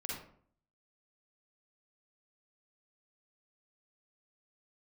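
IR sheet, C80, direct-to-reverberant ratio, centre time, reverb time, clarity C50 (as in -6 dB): 5.5 dB, -4.5 dB, 56 ms, 0.55 s, -1.0 dB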